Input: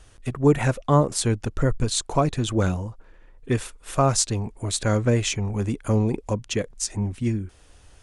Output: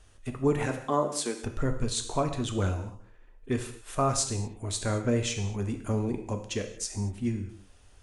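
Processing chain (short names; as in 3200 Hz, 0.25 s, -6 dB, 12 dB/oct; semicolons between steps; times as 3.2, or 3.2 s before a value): 0.65–1.42 HPF 140 Hz -> 300 Hz 24 dB/oct; on a send: reverb, pre-delay 3 ms, DRR 5 dB; on the sum: gain -7 dB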